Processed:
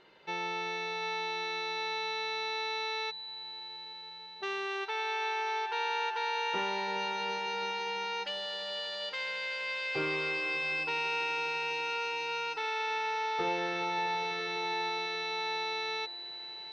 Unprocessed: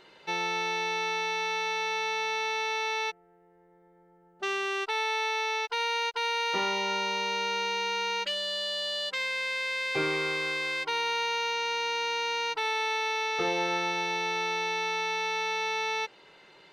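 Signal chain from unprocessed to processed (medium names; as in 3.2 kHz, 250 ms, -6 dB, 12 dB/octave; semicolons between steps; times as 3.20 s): distance through air 110 m; echo with a slow build-up 83 ms, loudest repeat 8, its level -16 dB; trim -4 dB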